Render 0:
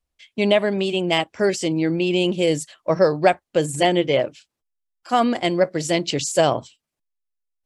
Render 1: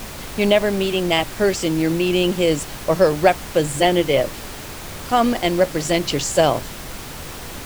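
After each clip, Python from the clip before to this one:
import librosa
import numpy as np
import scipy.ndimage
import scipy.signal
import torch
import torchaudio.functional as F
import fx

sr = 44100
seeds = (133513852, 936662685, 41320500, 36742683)

y = fx.dmg_noise_colour(x, sr, seeds[0], colour='pink', level_db=-34.0)
y = F.gain(torch.from_numpy(y), 1.5).numpy()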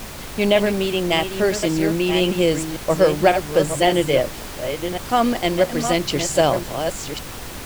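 y = fx.reverse_delay(x, sr, ms=553, wet_db=-7.5)
y = F.gain(torch.from_numpy(y), -1.0).numpy()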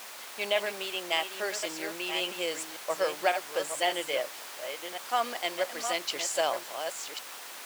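y = scipy.signal.sosfilt(scipy.signal.butter(2, 740.0, 'highpass', fs=sr, output='sos'), x)
y = F.gain(torch.from_numpy(y), -7.0).numpy()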